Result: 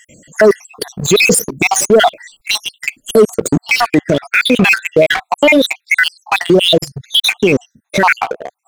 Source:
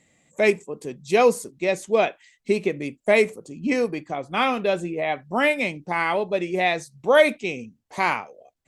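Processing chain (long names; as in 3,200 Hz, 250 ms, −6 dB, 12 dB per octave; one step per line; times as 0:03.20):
time-frequency cells dropped at random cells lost 70%
high-shelf EQ 9,700 Hz +3 dB, from 0:03.55 −8.5 dB
leveller curve on the samples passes 2
boost into a limiter +27.5 dB
level −1 dB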